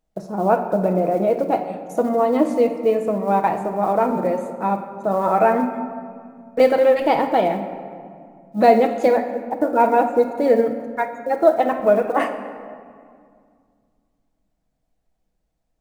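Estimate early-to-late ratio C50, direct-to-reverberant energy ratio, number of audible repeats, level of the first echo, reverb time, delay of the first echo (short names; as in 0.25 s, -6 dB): 8.5 dB, 4.5 dB, none, none, 2.1 s, none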